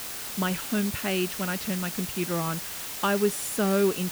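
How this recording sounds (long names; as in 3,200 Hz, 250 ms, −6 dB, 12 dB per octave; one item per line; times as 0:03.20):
a quantiser's noise floor 6 bits, dither triangular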